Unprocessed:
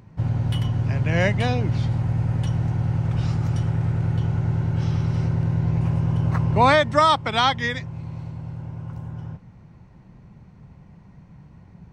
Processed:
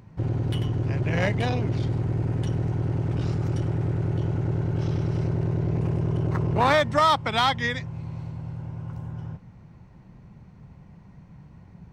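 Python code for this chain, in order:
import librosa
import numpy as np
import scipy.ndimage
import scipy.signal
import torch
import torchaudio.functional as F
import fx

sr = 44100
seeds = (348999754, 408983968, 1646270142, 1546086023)

p1 = 10.0 ** (-14.5 / 20.0) * (np.abs((x / 10.0 ** (-14.5 / 20.0) + 3.0) % 4.0 - 2.0) - 1.0)
p2 = x + (p1 * librosa.db_to_amplitude(-7.5))
p3 = fx.transformer_sat(p2, sr, knee_hz=330.0)
y = p3 * librosa.db_to_amplitude(-4.0)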